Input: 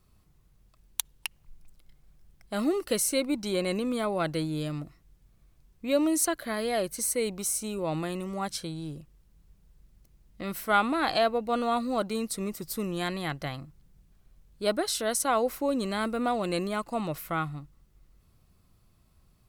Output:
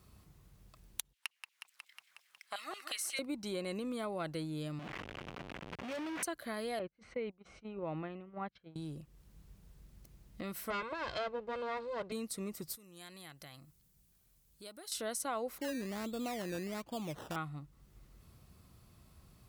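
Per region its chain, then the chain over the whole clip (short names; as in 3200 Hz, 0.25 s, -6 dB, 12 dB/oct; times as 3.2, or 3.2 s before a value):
1.13–3.19 high shelf 10000 Hz -5 dB + LFO high-pass saw down 5.6 Hz 870–3100 Hz + warbling echo 0.182 s, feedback 61%, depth 72 cents, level -12.5 dB
4.79–6.23 delta modulation 16 kbps, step -26 dBFS + HPF 330 Hz 6 dB/oct + overloaded stage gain 32.5 dB
6.79–8.76 gate -33 dBFS, range -24 dB + LPF 2700 Hz 24 dB/oct
10.7–12.12 minimum comb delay 1.9 ms + air absorption 130 m
12.75–14.92 compressor 2:1, threshold -47 dBFS + pre-emphasis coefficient 0.8
15.58–17.36 bell 2600 Hz -14.5 dB 1.9 oct + decimation with a swept rate 16×, swing 60% 1.3 Hz
whole clip: HPF 50 Hz; compressor 2:1, threshold -53 dBFS; gain +4.5 dB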